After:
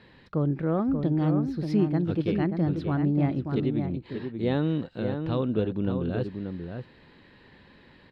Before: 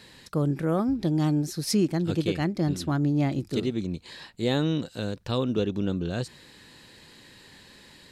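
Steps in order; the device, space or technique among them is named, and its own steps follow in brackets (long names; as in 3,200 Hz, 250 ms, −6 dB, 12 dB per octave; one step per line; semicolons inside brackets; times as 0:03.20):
shout across a valley (high-frequency loss of the air 390 metres; slap from a distant wall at 100 metres, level −6 dB)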